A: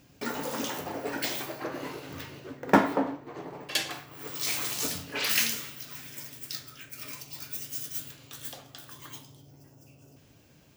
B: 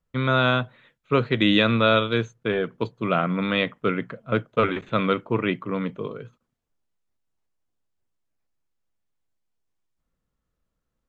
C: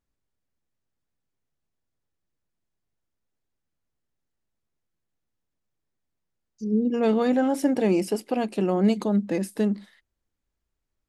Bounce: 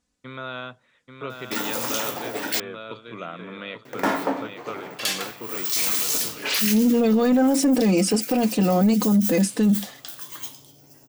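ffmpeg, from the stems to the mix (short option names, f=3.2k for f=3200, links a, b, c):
-filter_complex "[0:a]highshelf=f=4.4k:g=7.5,adelay=1300,volume=-2.5dB,asplit=3[a][b][c];[a]atrim=end=2.6,asetpts=PTS-STARTPTS,afade=t=out:st=2.596:d=0.004:c=hsin[d];[b]atrim=start=2.6:end=3.85,asetpts=PTS-STARTPTS,volume=0[e];[c]atrim=start=3.85,asetpts=PTS-STARTPTS,afade=t=in:d=0.004:c=hsin[f];[d][e][f]concat=n=3:v=0:a=1[g];[1:a]acompressor=threshold=-31dB:ratio=1.5,adelay=100,volume=-13.5dB,asplit=2[h][i];[i]volume=-6dB[j];[2:a]lowpass=f=9.1k:w=0.5412,lowpass=f=9.1k:w=1.3066,bass=f=250:g=9,treble=f=4k:g=7,aecho=1:1:4:0.73,volume=1dB,asplit=2[k][l];[l]apad=whole_len=532253[m];[g][m]sidechaincompress=threshold=-13dB:ratio=8:attack=16:release=288[n];[j]aecho=0:1:836|1672|2508|3344:1|0.31|0.0961|0.0298[o];[n][h][k][o]amix=inputs=4:normalize=0,highpass=f=290:p=1,acontrast=71,alimiter=limit=-12.5dB:level=0:latency=1:release=17"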